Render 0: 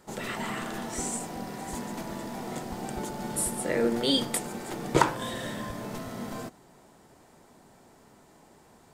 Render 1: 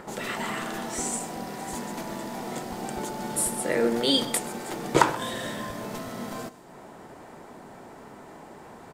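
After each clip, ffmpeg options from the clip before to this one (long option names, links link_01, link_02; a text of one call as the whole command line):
ffmpeg -i in.wav -filter_complex "[0:a]lowshelf=frequency=150:gain=-8,acrossover=split=2600[link_01][link_02];[link_01]acompressor=mode=upward:threshold=-38dB:ratio=2.5[link_03];[link_03][link_02]amix=inputs=2:normalize=0,asplit=2[link_04][link_05];[link_05]adelay=128.3,volume=-17dB,highshelf=frequency=4000:gain=-2.89[link_06];[link_04][link_06]amix=inputs=2:normalize=0,volume=3dB" out.wav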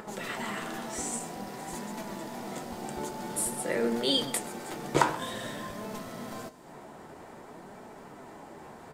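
ffmpeg -i in.wav -af "acompressor=mode=upward:threshold=-37dB:ratio=2.5,flanger=delay=4.6:depth=9.3:regen=62:speed=0.51:shape=sinusoidal" out.wav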